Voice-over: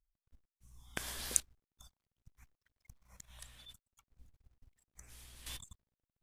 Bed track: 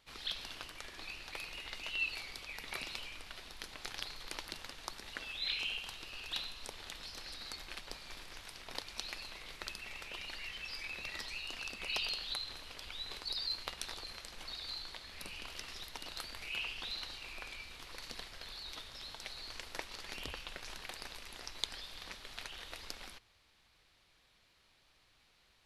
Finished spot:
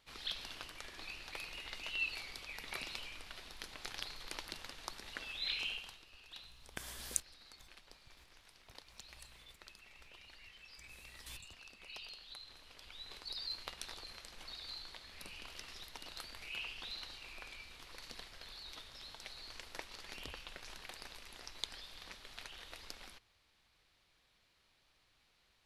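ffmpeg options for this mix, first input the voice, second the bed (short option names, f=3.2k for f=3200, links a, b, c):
-filter_complex "[0:a]adelay=5800,volume=-5dB[a];[1:a]volume=7.5dB,afade=t=out:st=5.67:d=0.37:silence=0.266073,afade=t=in:st=12.26:d=1.34:silence=0.354813[b];[a][b]amix=inputs=2:normalize=0"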